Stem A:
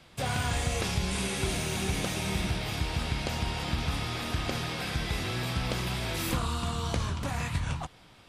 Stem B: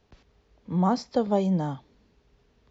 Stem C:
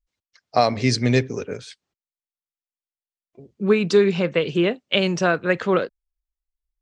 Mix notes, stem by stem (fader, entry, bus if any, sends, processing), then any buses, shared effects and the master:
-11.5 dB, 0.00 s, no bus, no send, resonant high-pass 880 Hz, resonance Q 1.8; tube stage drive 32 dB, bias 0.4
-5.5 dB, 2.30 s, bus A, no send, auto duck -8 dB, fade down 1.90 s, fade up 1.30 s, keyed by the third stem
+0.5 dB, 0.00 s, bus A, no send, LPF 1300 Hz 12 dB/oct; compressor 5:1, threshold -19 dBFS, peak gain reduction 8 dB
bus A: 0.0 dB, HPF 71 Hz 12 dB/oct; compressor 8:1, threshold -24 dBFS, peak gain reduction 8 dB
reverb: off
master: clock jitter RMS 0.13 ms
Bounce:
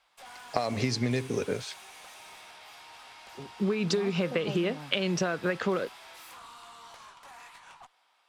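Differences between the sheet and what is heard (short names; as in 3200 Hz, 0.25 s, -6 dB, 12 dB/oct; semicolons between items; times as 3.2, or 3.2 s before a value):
stem B: entry 2.30 s -> 3.15 s; stem C: missing LPF 1300 Hz 12 dB/oct; master: missing clock jitter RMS 0.13 ms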